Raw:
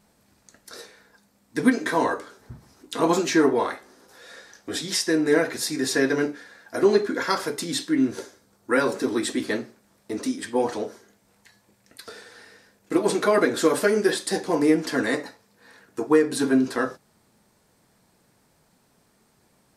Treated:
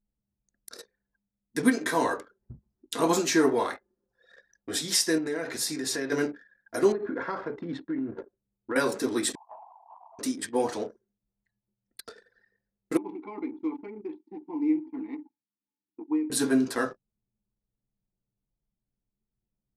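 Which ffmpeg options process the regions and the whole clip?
-filter_complex "[0:a]asettb=1/sr,asplit=3[a][b][c];[a]atrim=end=5.184[d];[b]atrim=start=5.18:end=6.12,asetpts=PTS-STARTPTS,afade=t=in:d=0.004:c=qsin,afade=t=out:st=0.936:d=0.004:c=qsin,highshelf=f=12k:g=-8,bandreject=f=60:t=h:w=6,bandreject=f=120:t=h:w=6,bandreject=f=180:t=h:w=6,acompressor=threshold=-26dB:ratio=3:attack=3.2:release=140:knee=1:detection=peak[e];[c]atrim=start=6.116[f];[d][e]acrossfade=d=0.004:c1=hsin:c2=qsin[g];[g][f]acrossfade=d=0.004:c1=qsin:c2=hsin,asettb=1/sr,asplit=3[h][i][j];[h]atrim=end=6.924[k];[i]atrim=start=6.92:end=8.76,asetpts=PTS-STARTPTS,afade=t=in:d=0.004:c=qsin,afade=t=out:st=1.836:d=0.004:c=qsin,lowpass=1.5k,acompressor=threshold=-23dB:ratio=12:attack=3.2:release=140:knee=1:detection=peak[l];[j]atrim=start=8.756[m];[k][l]acrossfade=d=0.004:c1=hsin:c2=qsin[n];[n][m]acrossfade=d=0.004:c1=qsin:c2=hsin,asettb=1/sr,asplit=3[o][p][q];[o]atrim=end=9.354[r];[p]atrim=start=9.35:end=10.19,asetpts=PTS-STARTPTS,afade=t=in:d=0.004:c=qsin,afade=t=out:st=0.836:d=0.004:c=qsin,aeval=exprs='val(0)+0.5*0.0447*sgn(val(0))':c=same,asuperpass=centerf=870:order=8:qfactor=2.1[s];[q]atrim=start=10.186[t];[r][s]acrossfade=d=0.004:c1=hsin:c2=qsin[u];[u][t]acrossfade=d=0.004:c1=qsin:c2=hsin,asettb=1/sr,asplit=3[v][w][x];[v]atrim=end=12.974[y];[w]atrim=start=12.97:end=16.3,asetpts=PTS-STARTPTS,afade=t=in:d=0.004:c=qsin,afade=t=out:st=3.326:d=0.004:c=qsin,asplit=3[z][aa][ab];[z]bandpass=f=300:t=q:w=8,volume=0dB[ac];[aa]bandpass=f=870:t=q:w=8,volume=-6dB[ad];[ab]bandpass=f=2.24k:t=q:w=8,volume=-9dB[ae];[ac][ad][ae]amix=inputs=3:normalize=0,equalizer=f=8.4k:t=o:w=1.1:g=-5.5[af];[x]atrim=start=16.296[ag];[y][af]acrossfade=d=0.004:c1=hsin:c2=qsin[ah];[ah][ag]acrossfade=d=0.004:c1=qsin:c2=hsin,anlmdn=0.631,highshelf=f=6.3k:g=9.5,volume=-3.5dB"

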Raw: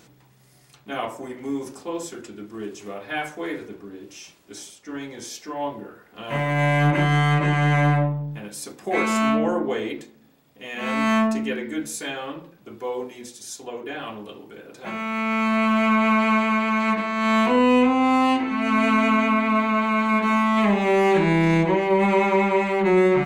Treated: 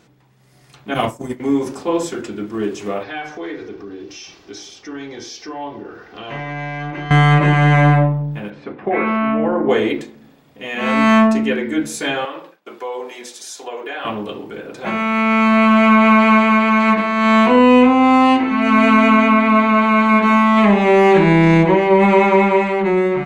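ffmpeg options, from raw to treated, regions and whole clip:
-filter_complex "[0:a]asettb=1/sr,asplit=3[a][b][c];[a]atrim=end=0.944[d];[b]atrim=start=0.94:end=1.4,asetpts=PTS-STARTPTS,afade=t=in:d=0.004:c=qsin,afade=t=out:st=0.456:d=0.004:c=qsin,bass=f=250:g=13,treble=f=4k:g=14,agate=range=-33dB:threshold=-24dB:ratio=3:release=100:detection=peak[e];[c]atrim=start=1.396[f];[d][e]acrossfade=d=0.004:c1=hsin:c2=qsin[g];[g][f]acrossfade=d=0.004:c1=qsin:c2=hsin,asettb=1/sr,asplit=3[h][i][j];[h]atrim=end=3.034[k];[i]atrim=start=3.03:end=7.11,asetpts=PTS-STARTPTS,afade=t=in:d=0.004:c=qsin,afade=t=out:st=4.076:d=0.004:c=qsin,highshelf=f=6.9k:t=q:w=3:g=-8,aecho=1:1:2.6:0.38,atrim=end_sample=179928,acompressor=threshold=-45dB:ratio=2:attack=3.2:release=140:knee=1:detection=peak[l];[j]atrim=start=7.106[m];[k][l]acrossfade=d=0.004:c1=hsin:c2=qsin[n];[n][m]acrossfade=d=0.004:c1=qsin:c2=hsin,asettb=1/sr,asplit=3[o][p][q];[o]atrim=end=8.504[r];[p]atrim=start=8.5:end=9.69,asetpts=PTS-STARTPTS,afade=t=in:d=0.004:c=qsin,afade=t=out:st=1.186:d=0.004:c=qsin,lowpass=f=2.6k:w=0.5412,lowpass=f=2.6k:w=1.3066,acompressor=threshold=-24dB:ratio=6:attack=3.2:release=140:knee=1:detection=peak[s];[q]atrim=start=9.686[t];[r][s]acrossfade=d=0.004:c1=hsin:c2=qsin[u];[u][t]acrossfade=d=0.004:c1=qsin:c2=hsin,asettb=1/sr,asplit=3[v][w][x];[v]atrim=end=12.254[y];[w]atrim=start=12.25:end=14.05,asetpts=PTS-STARTPTS,afade=t=in:d=0.004:c=qsin,afade=t=out:st=1.796:d=0.004:c=qsin,highpass=530,acompressor=threshold=-36dB:ratio=2.5:attack=3.2:release=140:knee=1:detection=peak,agate=range=-33dB:threshold=-53dB:ratio=3:release=100:detection=peak[z];[x]atrim=start=14.046[aa];[y][z]acrossfade=d=0.004:c1=hsin:c2=qsin[ab];[ab][aa]acrossfade=d=0.004:c1=qsin:c2=hsin,highshelf=f=6.3k:g=-10.5,dynaudnorm=f=120:g=11:m=11.5dB"

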